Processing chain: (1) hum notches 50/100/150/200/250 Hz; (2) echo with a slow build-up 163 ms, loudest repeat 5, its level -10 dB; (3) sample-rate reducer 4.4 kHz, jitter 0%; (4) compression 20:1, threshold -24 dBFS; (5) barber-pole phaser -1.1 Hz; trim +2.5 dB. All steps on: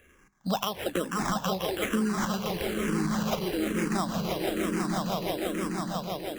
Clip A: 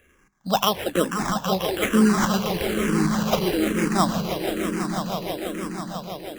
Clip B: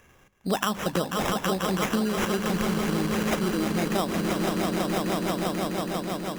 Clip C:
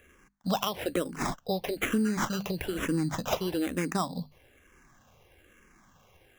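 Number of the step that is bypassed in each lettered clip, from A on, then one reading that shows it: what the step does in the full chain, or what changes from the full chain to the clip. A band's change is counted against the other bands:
4, mean gain reduction 4.5 dB; 5, loudness change +3.0 LU; 2, momentary loudness spread change +3 LU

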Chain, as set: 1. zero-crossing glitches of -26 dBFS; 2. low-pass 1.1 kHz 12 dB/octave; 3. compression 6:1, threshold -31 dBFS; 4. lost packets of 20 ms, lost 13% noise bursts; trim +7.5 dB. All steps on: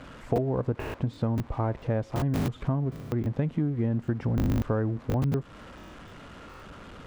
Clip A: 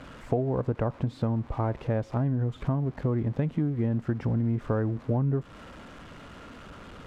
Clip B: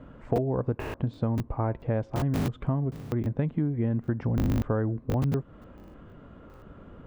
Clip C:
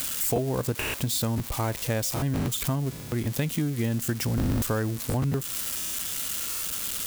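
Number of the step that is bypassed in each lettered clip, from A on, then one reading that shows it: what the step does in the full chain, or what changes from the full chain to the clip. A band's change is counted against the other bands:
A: 4, 2 kHz band -2.0 dB; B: 1, distortion -9 dB; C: 2, 4 kHz band +16.0 dB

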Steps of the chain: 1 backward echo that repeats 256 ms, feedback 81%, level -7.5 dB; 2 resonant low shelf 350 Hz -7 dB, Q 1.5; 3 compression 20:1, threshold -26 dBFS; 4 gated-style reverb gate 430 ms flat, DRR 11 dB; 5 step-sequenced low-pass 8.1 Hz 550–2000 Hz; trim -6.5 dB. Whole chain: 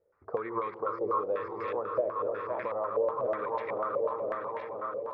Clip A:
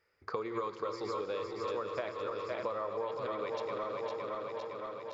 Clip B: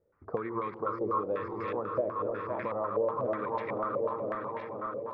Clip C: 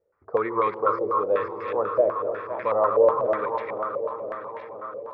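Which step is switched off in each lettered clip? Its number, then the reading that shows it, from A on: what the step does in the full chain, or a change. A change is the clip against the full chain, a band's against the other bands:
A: 5, 1 kHz band -4.0 dB; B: 2, 125 Hz band +8.0 dB; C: 3, mean gain reduction 5.0 dB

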